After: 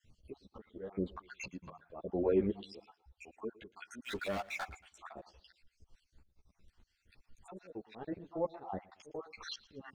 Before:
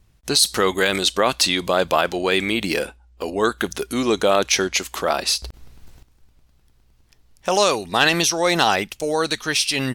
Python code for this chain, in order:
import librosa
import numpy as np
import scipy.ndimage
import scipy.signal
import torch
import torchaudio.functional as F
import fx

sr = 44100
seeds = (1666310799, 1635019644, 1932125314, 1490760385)

y = fx.spec_dropout(x, sr, seeds[0], share_pct=61)
y = scipy.signal.sosfilt(scipy.signal.butter(2, 6900.0, 'lowpass', fs=sr, output='sos'), y)
y = fx.env_lowpass_down(y, sr, base_hz=480.0, full_db=-21.0)
y = fx.graphic_eq_31(y, sr, hz=(160, 315, 1000), db=(7, -9, 5), at=(1.04, 1.86))
y = fx.auto_swell(y, sr, attack_ms=328.0)
y = fx.leveller(y, sr, passes=5, at=(4.04, 4.64))
y = fx.echo_feedback(y, sr, ms=114, feedback_pct=36, wet_db=-20.5)
y = fx.ensemble(y, sr)
y = F.gain(torch.from_numpy(y), -1.5).numpy()